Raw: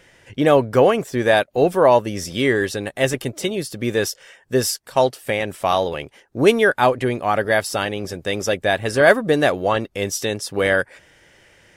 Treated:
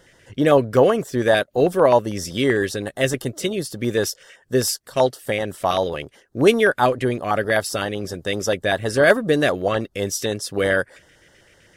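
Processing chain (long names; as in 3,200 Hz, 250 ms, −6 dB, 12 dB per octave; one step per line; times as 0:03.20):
auto-filter notch square 7.8 Hz 870–2,400 Hz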